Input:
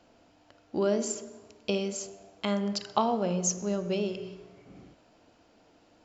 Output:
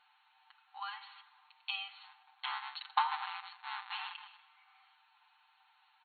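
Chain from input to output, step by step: 2.04–4.4 cycle switcher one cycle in 3, muted; brick-wall FIR band-pass 760–4400 Hz; comb 6.7 ms, depth 89%; gain -3 dB

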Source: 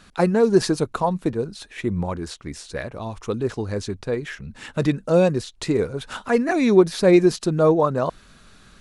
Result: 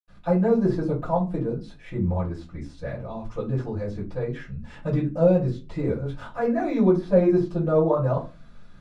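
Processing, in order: de-esser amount 95%; LPF 2300 Hz 6 dB/oct; reverb RT60 0.30 s, pre-delay 78 ms; gain +5.5 dB

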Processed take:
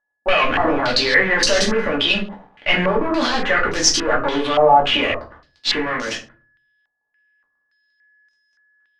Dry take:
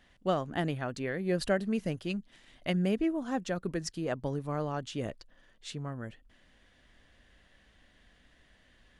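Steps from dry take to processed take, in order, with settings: HPF 660 Hz 12 dB/oct; transient shaper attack -3 dB, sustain +11 dB; sample leveller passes 5; whine 1700 Hz -47 dBFS; power-law curve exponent 2; one-sided clip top -33.5 dBFS; shoebox room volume 190 m³, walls furnished, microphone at 2.4 m; stepped low-pass 3.5 Hz 840–5900 Hz; gain +6 dB

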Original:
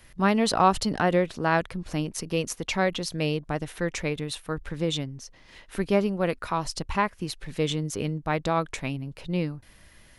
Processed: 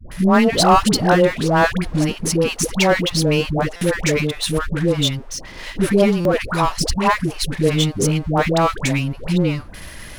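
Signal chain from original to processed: power-law curve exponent 0.7; dispersion highs, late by 0.117 s, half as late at 630 Hz; stuck buffer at 3.76/6.2, samples 256, times 8; gain +5.5 dB

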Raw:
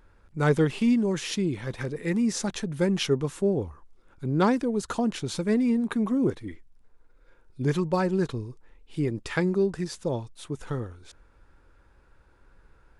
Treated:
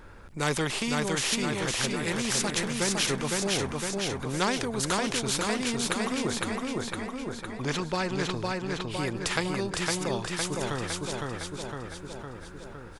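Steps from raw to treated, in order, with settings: 6.35–8.43 air absorption 66 m; feedback echo 0.509 s, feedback 48%, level -4 dB; spectral compressor 2:1

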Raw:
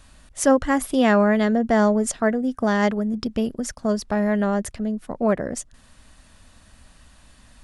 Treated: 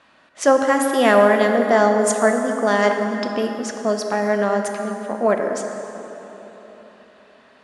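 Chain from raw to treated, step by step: low-pass opened by the level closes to 2600 Hz, open at -17 dBFS; HPF 350 Hz 12 dB/oct; plate-style reverb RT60 3.9 s, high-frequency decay 0.55×, DRR 3.5 dB; gain +4 dB

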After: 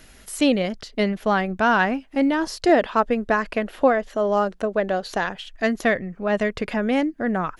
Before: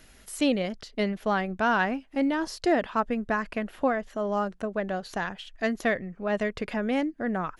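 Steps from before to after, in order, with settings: 2.69–5.35 graphic EQ 125/500/4000 Hz -7/+4/+3 dB; gain +5.5 dB

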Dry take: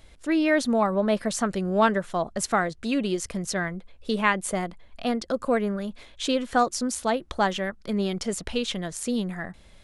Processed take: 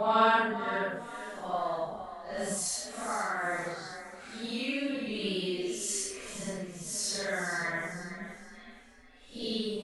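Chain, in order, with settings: recorder AGC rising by 6 dB/s; low shelf 440 Hz -11.5 dB; level quantiser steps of 11 dB; Paulstretch 4.1×, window 0.10 s, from 1.78; frequency-shifting echo 0.463 s, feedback 38%, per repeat +31 Hz, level -11.5 dB

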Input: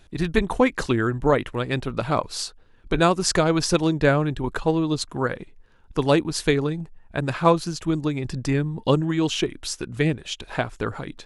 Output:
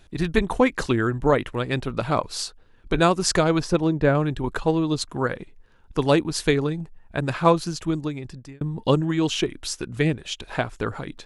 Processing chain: 3.6–4.15 high shelf 2300 Hz -11.5 dB; 7.8–8.61 fade out

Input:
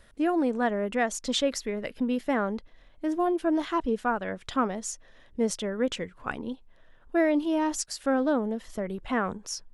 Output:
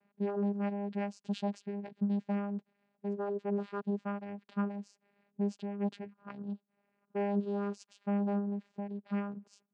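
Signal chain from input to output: low-pass opened by the level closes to 2300 Hz, open at -21 dBFS; vocoder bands 8, saw 202 Hz; gain -6.5 dB

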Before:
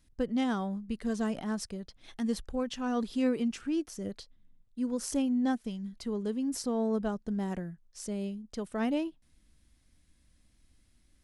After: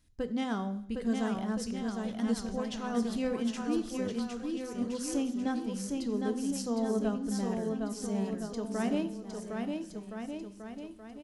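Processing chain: bouncing-ball echo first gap 0.76 s, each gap 0.8×, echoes 5; on a send at -11 dB: reverb RT60 0.70 s, pre-delay 3 ms; on the sum: gain -2 dB

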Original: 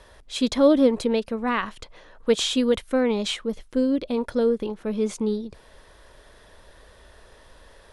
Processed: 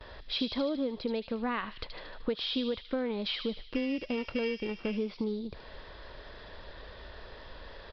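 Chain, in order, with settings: 3.65–4.97 sample sorter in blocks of 16 samples; gate with hold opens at -43 dBFS; compressor 6:1, threshold -34 dBFS, peak gain reduction 20 dB; on a send: thin delay 76 ms, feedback 58%, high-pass 3400 Hz, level -4 dB; on the sum: downsampling 11025 Hz; gain +3.5 dB

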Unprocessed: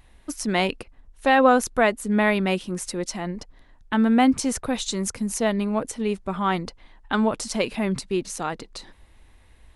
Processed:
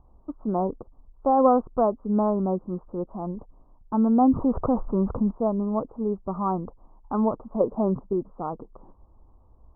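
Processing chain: 7.6–8.13 dynamic EQ 560 Hz, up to +6 dB, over -35 dBFS, Q 0.75; steep low-pass 1200 Hz 72 dB/oct; 4.21–5.31 fast leveller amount 50%; gain -1.5 dB

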